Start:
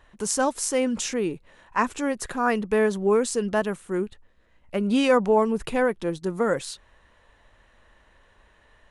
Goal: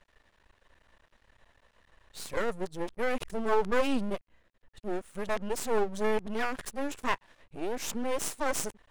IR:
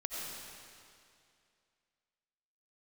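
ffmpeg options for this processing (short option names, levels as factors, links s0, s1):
-af "areverse,aeval=exprs='max(val(0),0)':c=same,volume=0.75"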